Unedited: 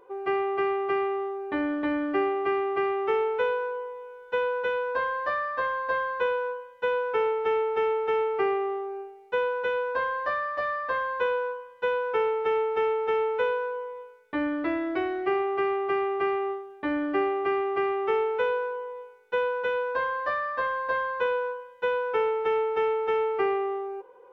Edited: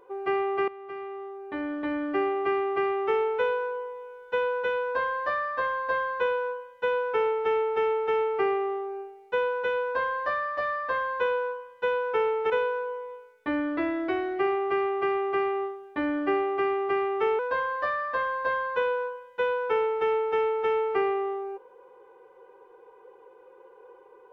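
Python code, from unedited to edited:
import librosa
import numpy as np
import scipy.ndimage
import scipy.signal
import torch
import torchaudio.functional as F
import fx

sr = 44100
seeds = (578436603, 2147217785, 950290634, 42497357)

y = fx.edit(x, sr, fx.fade_in_from(start_s=0.68, length_s=1.73, floor_db=-17.5),
    fx.cut(start_s=12.5, length_s=0.87),
    fx.cut(start_s=18.26, length_s=1.57), tone=tone)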